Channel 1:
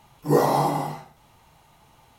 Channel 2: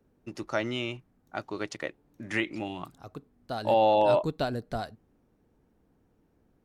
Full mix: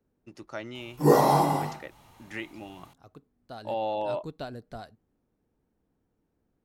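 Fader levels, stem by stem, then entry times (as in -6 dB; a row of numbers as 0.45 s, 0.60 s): 0.0 dB, -8.0 dB; 0.75 s, 0.00 s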